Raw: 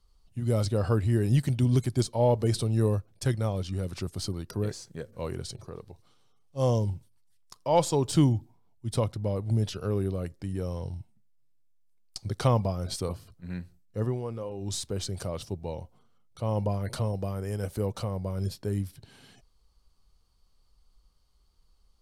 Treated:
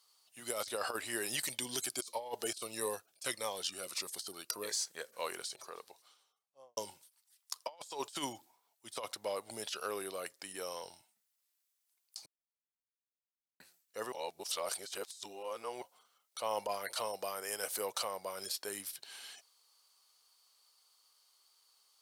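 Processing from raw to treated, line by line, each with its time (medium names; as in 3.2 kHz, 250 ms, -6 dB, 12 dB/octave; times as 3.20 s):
1.44–4.81 s: Shepard-style phaser falling 1.6 Hz
5.86–6.77 s: studio fade out
12.26–13.60 s: mute
14.12–15.82 s: reverse
whole clip: high-pass 680 Hz 12 dB/octave; tilt EQ +2.5 dB/octave; compressor with a negative ratio -37 dBFS, ratio -0.5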